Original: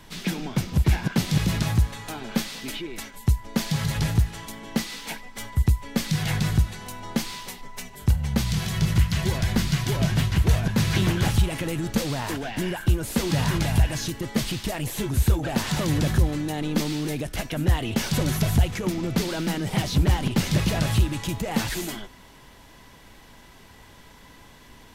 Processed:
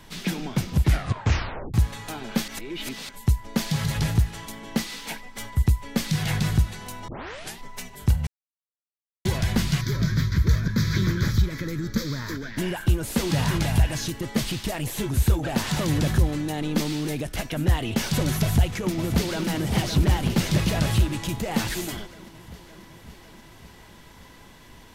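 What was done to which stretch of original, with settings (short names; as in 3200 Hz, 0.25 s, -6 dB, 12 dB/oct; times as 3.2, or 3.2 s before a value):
0.83 tape stop 0.91 s
2.48–3.09 reverse
7.08 tape start 0.50 s
8.27–9.25 mute
9.81–12.58 fixed phaser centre 2800 Hz, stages 6
18.42–19.48 echo throw 0.56 s, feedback 70%, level -7.5 dB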